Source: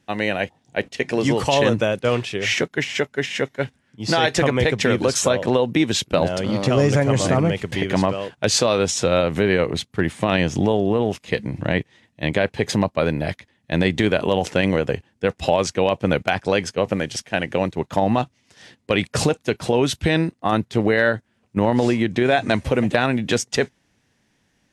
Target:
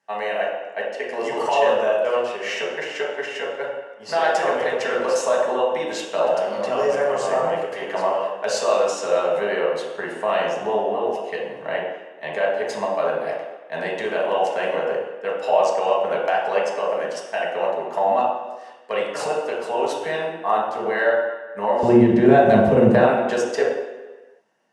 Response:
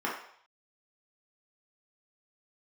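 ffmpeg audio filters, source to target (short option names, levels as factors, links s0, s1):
-filter_complex "[0:a]asetnsamples=n=441:p=0,asendcmd='21.83 highpass f 94;22.97 highpass f 490',highpass=740[s0];[1:a]atrim=start_sample=2205,asetrate=22932,aresample=44100[s1];[s0][s1]afir=irnorm=-1:irlink=0,volume=0.335"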